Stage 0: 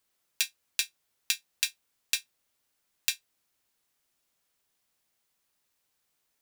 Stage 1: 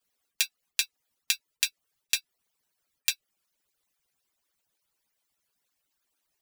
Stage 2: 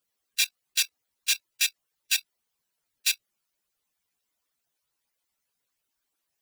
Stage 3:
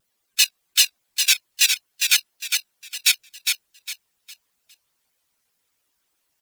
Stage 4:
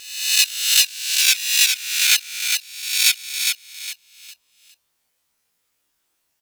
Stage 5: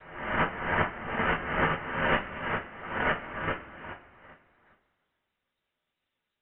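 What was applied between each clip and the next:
harmonic-percussive separation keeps percussive; trim +2 dB
phase randomisation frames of 50 ms; level held to a coarse grid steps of 15 dB; trim +8.5 dB
on a send: feedback delay 407 ms, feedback 30%, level -5 dB; on the sum: vibrato with a chosen wave saw down 5.1 Hz, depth 160 cents; trim +7.5 dB
reverse spectral sustain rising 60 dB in 0.83 s; trim -1.5 dB
noise-vocoded speech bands 6; two-slope reverb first 0.26 s, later 2.2 s, from -18 dB, DRR 1.5 dB; frequency inversion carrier 3.9 kHz; trim -7.5 dB

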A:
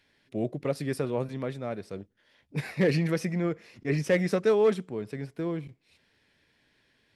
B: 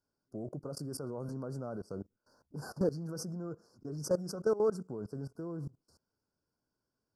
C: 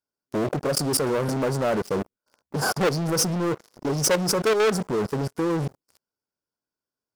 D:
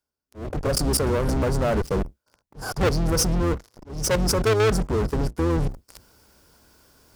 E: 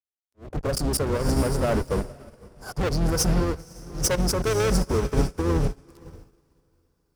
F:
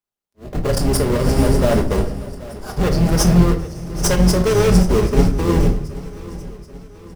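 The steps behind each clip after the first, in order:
level held to a coarse grid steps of 22 dB; Chebyshev band-stop 1.5–4.6 kHz, order 5; peak limiter -26 dBFS, peak gain reduction 11 dB; trim +5 dB
waveshaping leveller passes 5; bass shelf 270 Hz -10 dB; trim +6.5 dB
octave divider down 2 oct, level +3 dB; reverse; upward compressor, threshold -30 dBFS; reverse; slow attack 333 ms
peak limiter -17.5 dBFS, peak gain reduction 6.5 dB; echo that smears into a reverb 518 ms, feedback 44%, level -9 dB; upward expansion 2.5:1, over -41 dBFS; trim +5.5 dB
in parallel at -6 dB: sample-rate reducer 2.4 kHz, jitter 20%; on the sum: feedback delay 782 ms, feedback 50%, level -18 dB; reverberation RT60 0.50 s, pre-delay 5 ms, DRR 4 dB; trim +2.5 dB

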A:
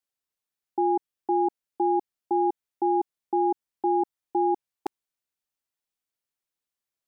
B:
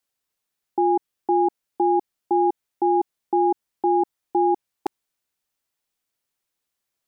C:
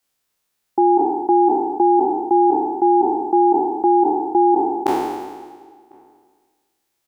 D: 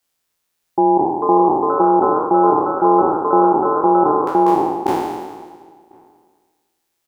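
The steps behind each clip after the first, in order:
peak limiter -20 dBFS, peak gain reduction 3.5 dB; trim +7.5 dB
spectral sustain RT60 1.49 s; echo from a far wall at 180 m, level -28 dB; trim +5 dB
ever faster or slower copies 604 ms, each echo +4 st, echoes 2, each echo -6 dB; AM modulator 170 Hz, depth 35%; trim +3 dB

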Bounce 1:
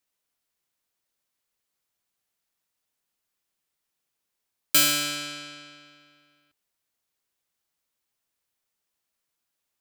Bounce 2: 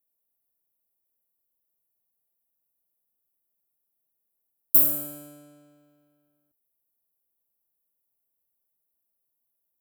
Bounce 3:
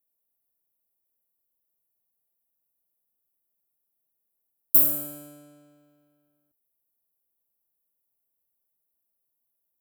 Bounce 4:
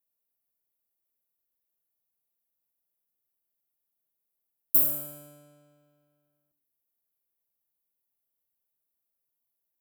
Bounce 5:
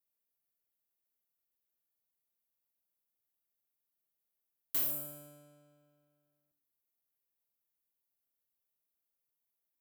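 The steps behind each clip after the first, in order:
FFT filter 690 Hz 0 dB, 2.1 kHz -26 dB, 5.3 kHz -26 dB, 12 kHz +9 dB; trim -3 dB
no audible change
reverberation RT60 0.65 s, pre-delay 52 ms, DRR 15.5 dB; trim -4 dB
saturation -24.5 dBFS, distortion -7 dB; trim -4 dB

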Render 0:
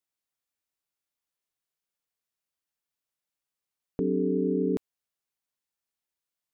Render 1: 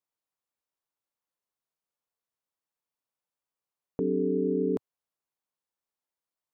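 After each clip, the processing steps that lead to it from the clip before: graphic EQ 125/250/500/1000 Hz +4/+3/+6/+8 dB; trim -6.5 dB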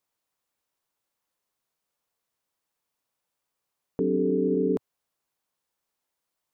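peak limiter -25.5 dBFS, peak gain reduction 8 dB; trim +8.5 dB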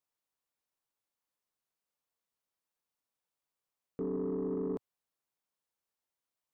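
saturation -19.5 dBFS, distortion -18 dB; trim -8.5 dB

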